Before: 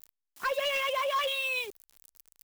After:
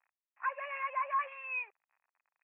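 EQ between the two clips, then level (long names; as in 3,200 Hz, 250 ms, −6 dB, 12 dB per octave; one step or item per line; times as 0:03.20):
four-pole ladder high-pass 860 Hz, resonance 45%
Chebyshev low-pass with heavy ripple 2,600 Hz, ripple 6 dB
+5.5 dB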